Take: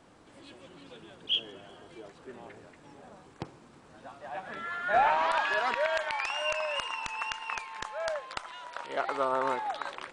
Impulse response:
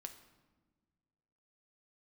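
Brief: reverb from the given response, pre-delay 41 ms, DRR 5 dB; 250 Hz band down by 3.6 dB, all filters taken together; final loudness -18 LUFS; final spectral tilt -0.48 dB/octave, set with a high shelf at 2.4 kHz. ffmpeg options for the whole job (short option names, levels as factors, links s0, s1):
-filter_complex "[0:a]equalizer=f=250:t=o:g=-5,highshelf=f=2400:g=9,asplit=2[s0][s1];[1:a]atrim=start_sample=2205,adelay=41[s2];[s1][s2]afir=irnorm=-1:irlink=0,volume=1[s3];[s0][s3]amix=inputs=2:normalize=0,volume=2.82"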